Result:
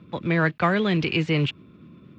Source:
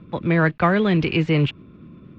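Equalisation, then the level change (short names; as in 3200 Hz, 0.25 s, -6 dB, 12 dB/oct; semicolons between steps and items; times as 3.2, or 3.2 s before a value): HPF 77 Hz; high shelf 3100 Hz +9.5 dB; -4.0 dB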